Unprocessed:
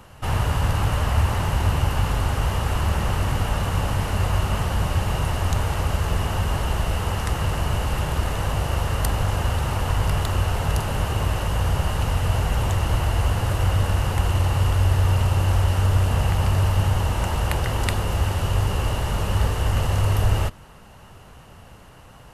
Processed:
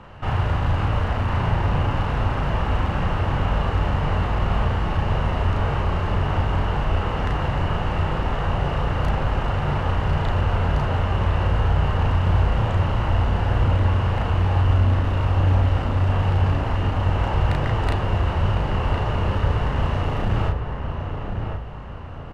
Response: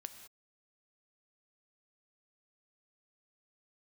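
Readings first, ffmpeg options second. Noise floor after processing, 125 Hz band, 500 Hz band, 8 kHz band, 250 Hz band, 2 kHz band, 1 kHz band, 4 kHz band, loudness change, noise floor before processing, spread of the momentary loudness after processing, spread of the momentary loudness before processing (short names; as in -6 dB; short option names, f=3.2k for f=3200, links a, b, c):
-29 dBFS, +0.5 dB, +2.0 dB, under -15 dB, +3.0 dB, +0.5 dB, +2.0 dB, -3.5 dB, +0.5 dB, -46 dBFS, 4 LU, 4 LU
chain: -filter_complex "[0:a]lowpass=2.6k,bandreject=f=60:t=h:w=6,bandreject=f=120:t=h:w=6,asplit=2[a][b];[b]acompressor=threshold=-33dB:ratio=6,volume=-2.5dB[c];[a][c]amix=inputs=2:normalize=0,asoftclip=type=hard:threshold=-16dB,asplit=2[d][e];[e]adelay=35,volume=-2dB[f];[d][f]amix=inputs=2:normalize=0,asplit=2[g][h];[h]adelay=1056,lowpass=f=1.9k:p=1,volume=-5dB,asplit=2[i][j];[j]adelay=1056,lowpass=f=1.9k:p=1,volume=0.37,asplit=2[k][l];[l]adelay=1056,lowpass=f=1.9k:p=1,volume=0.37,asplit=2[m][n];[n]adelay=1056,lowpass=f=1.9k:p=1,volume=0.37,asplit=2[o][p];[p]adelay=1056,lowpass=f=1.9k:p=1,volume=0.37[q];[i][k][m][o][q]amix=inputs=5:normalize=0[r];[g][r]amix=inputs=2:normalize=0,volume=-2dB"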